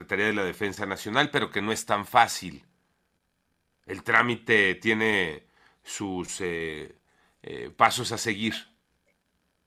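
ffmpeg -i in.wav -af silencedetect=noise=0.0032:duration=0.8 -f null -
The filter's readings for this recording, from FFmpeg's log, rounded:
silence_start: 2.64
silence_end: 3.87 | silence_duration: 1.24
silence_start: 8.66
silence_end: 9.66 | silence_duration: 1.00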